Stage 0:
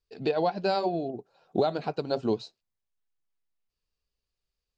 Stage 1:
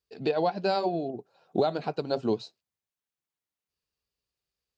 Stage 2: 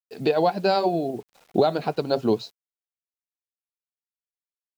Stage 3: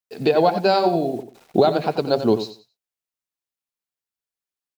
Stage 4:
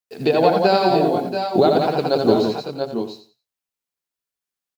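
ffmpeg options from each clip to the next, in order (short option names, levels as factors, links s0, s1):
-af "highpass=77"
-af "acrusher=bits=9:mix=0:aa=0.000001,volume=1.88"
-af "aecho=1:1:90|180|270:0.282|0.0648|0.0149,volume=1.5"
-af "aecho=1:1:78|172|680|702:0.562|0.562|0.335|0.316"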